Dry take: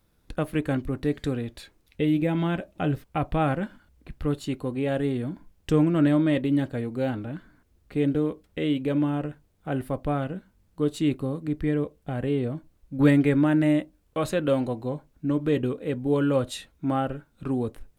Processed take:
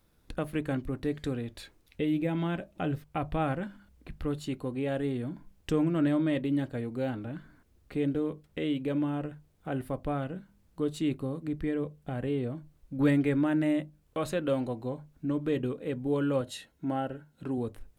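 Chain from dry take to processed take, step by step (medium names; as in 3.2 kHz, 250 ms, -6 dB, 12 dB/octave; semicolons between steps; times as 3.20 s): hum notches 50/100/150/200 Hz; in parallel at +0.5 dB: compression, threshold -39 dBFS, peak gain reduction 22.5 dB; 16.41–17.58 s: on the sum: comb of notches 1.2 kHz; trim -6.5 dB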